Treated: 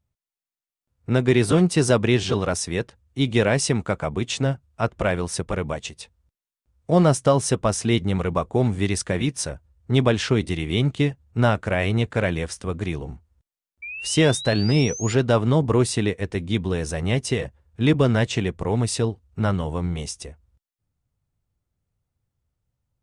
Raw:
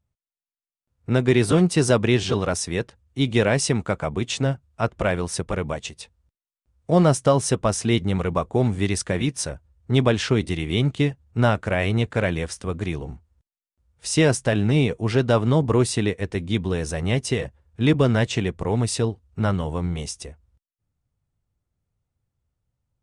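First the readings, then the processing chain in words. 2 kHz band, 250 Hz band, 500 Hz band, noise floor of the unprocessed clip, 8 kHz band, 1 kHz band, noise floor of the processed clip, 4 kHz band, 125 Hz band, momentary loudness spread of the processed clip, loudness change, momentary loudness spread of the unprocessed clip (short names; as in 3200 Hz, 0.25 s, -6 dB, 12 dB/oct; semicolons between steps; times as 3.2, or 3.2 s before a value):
0.0 dB, 0.0 dB, 0.0 dB, under -85 dBFS, +0.5 dB, 0.0 dB, under -85 dBFS, +0.5 dB, 0.0 dB, 11 LU, 0.0 dB, 10 LU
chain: painted sound rise, 13.82–15.14, 2300–7200 Hz -34 dBFS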